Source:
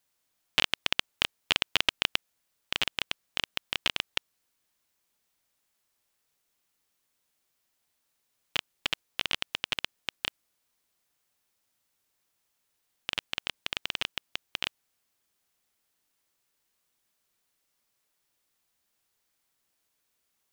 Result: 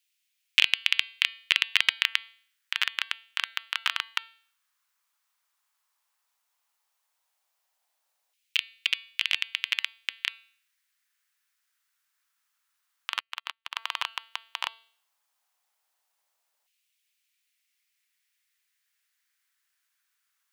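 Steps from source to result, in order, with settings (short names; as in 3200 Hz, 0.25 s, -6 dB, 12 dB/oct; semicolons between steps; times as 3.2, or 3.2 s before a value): de-hum 225.7 Hz, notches 21; dynamic EQ 1000 Hz, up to +6 dB, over -51 dBFS, Q 1.8; LFO high-pass saw down 0.12 Hz 690–2600 Hz; 13.2–13.76 upward expander 2.5:1, over -49 dBFS; gain -1 dB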